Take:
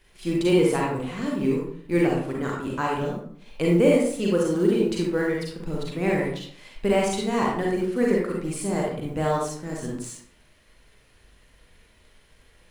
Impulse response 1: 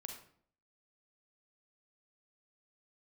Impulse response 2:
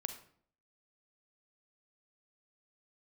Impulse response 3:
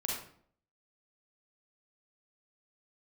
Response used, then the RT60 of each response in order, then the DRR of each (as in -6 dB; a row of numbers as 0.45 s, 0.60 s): 3; 0.55 s, 0.55 s, 0.55 s; 3.0 dB, 8.0 dB, -3.0 dB